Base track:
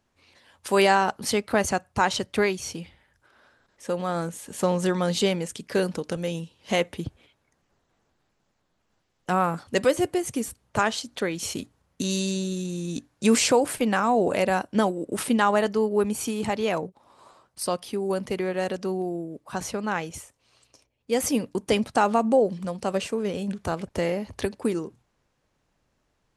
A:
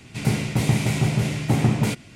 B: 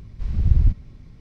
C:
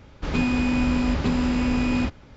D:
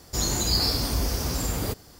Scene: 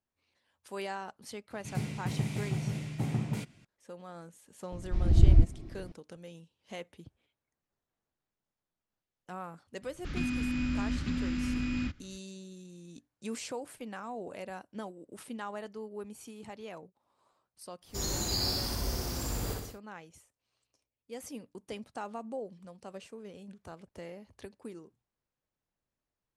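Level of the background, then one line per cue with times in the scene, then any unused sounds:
base track −19 dB
0:01.50: mix in A −15.5 dB + parametric band 160 Hz +5.5 dB
0:04.72: mix in B −3 dB + hollow resonant body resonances 330/670 Hz, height 17 dB, ringing for 60 ms
0:09.82: mix in C −9.5 dB + flat-topped bell 630 Hz −13 dB
0:17.81: mix in D −9.5 dB, fades 0.10 s + flutter between parallel walls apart 10.4 metres, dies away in 0.91 s

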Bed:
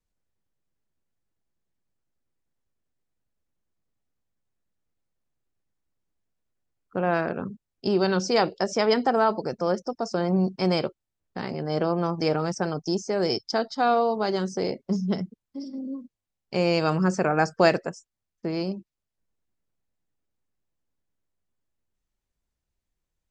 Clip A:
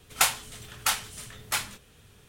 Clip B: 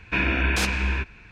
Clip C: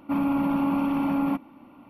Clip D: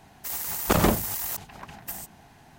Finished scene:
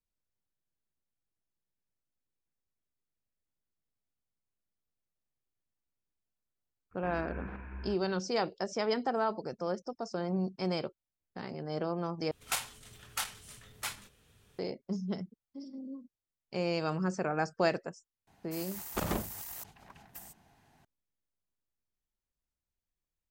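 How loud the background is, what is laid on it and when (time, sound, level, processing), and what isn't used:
bed −9.5 dB
0:06.91: mix in B −18 dB + low-pass filter 1,600 Hz 24 dB per octave
0:12.31: overwrite with A −9 dB + saturating transformer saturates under 1,800 Hz
0:18.27: mix in D −12.5 dB
not used: C

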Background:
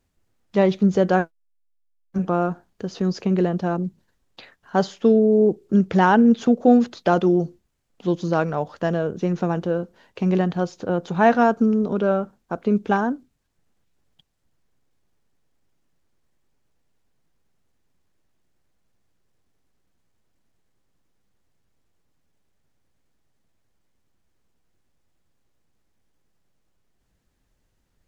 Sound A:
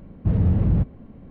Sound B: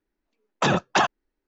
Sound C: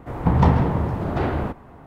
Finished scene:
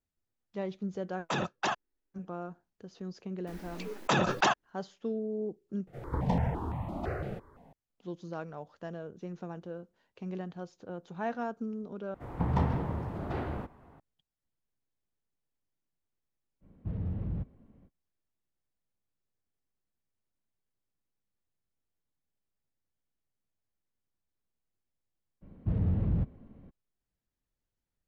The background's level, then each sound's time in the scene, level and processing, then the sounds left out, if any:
background −18.5 dB
0:00.68: mix in B −11 dB
0:03.47: mix in B −6 dB + background raised ahead of every attack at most 29 dB per second
0:05.87: overwrite with C −9 dB + step-sequenced phaser 5.9 Hz 270–1,500 Hz
0:12.14: overwrite with C −12 dB
0:16.60: mix in A −15.5 dB, fades 0.05 s
0:25.41: mix in A −9.5 dB, fades 0.02 s

